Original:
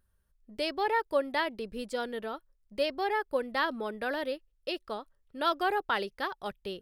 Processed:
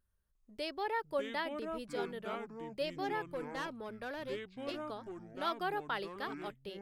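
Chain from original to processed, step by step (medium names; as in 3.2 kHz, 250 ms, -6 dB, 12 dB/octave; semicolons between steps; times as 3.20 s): 3.32–4.82 s: valve stage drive 26 dB, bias 0.4; ever faster or slower copies 353 ms, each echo -6 st, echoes 2, each echo -6 dB; trim -7.5 dB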